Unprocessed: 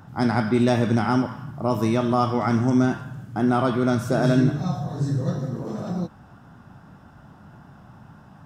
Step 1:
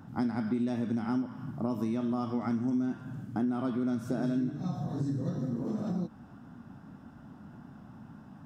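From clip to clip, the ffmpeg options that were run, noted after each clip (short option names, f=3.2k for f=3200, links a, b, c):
-af "equalizer=f=250:t=o:w=0.87:g=11,acompressor=threshold=-22dB:ratio=5,volume=-7dB"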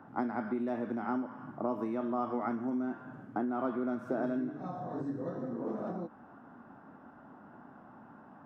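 -filter_complex "[0:a]acrossover=split=320 2000:gain=0.112 1 0.0794[a][b][c];[a][b][c]amix=inputs=3:normalize=0,volume=4.5dB"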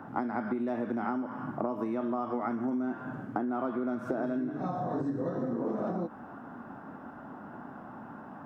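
-af "acompressor=threshold=-37dB:ratio=6,volume=8.5dB"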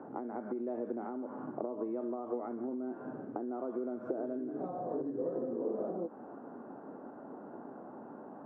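-af "acompressor=threshold=-33dB:ratio=6,bandpass=f=440:t=q:w=2.2:csg=0,volume=5.5dB"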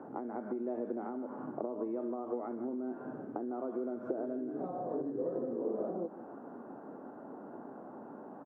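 -af "aecho=1:1:154:0.168"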